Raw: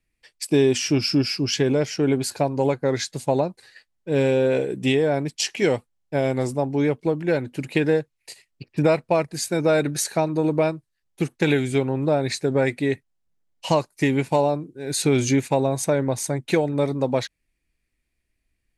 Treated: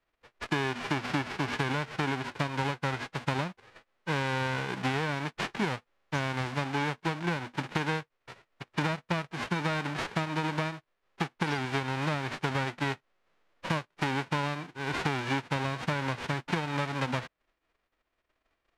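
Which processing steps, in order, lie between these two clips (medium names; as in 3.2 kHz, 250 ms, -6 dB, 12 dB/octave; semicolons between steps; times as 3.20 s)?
formants flattened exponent 0.1; low-pass 2 kHz 12 dB/octave; compression, threshold -29 dBFS, peak gain reduction 12.5 dB; trim +2.5 dB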